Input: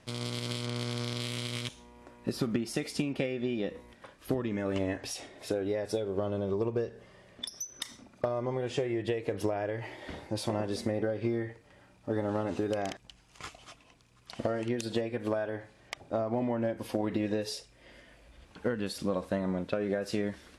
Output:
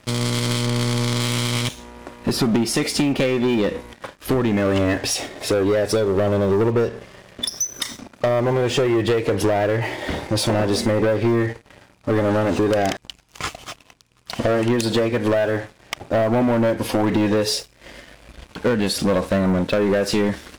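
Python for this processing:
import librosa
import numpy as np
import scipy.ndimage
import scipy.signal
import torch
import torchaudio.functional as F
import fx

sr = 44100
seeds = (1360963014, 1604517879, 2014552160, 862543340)

y = fx.leveller(x, sr, passes=3)
y = F.gain(torch.from_numpy(y), 5.5).numpy()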